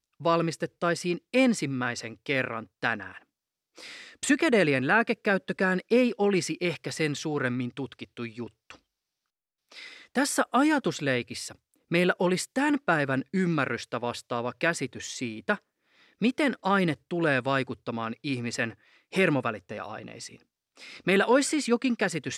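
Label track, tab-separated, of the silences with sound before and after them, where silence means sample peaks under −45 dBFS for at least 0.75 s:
8.760000	9.720000	silence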